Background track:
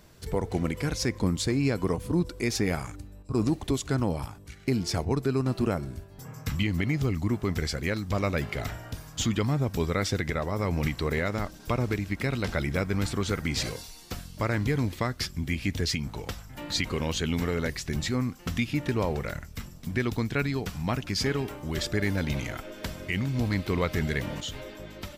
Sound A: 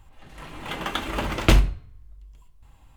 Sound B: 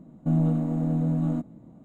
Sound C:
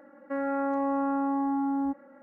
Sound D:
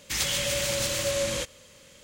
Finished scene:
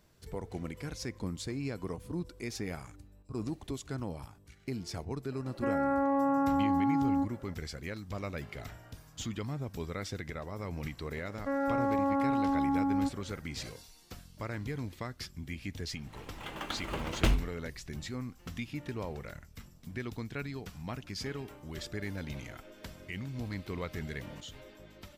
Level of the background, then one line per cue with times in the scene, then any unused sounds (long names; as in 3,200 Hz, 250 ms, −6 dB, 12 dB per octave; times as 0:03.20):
background track −11 dB
0:05.32: mix in C −0.5 dB
0:11.16: mix in C −1.5 dB
0:15.75: mix in A −10.5 dB
not used: B, D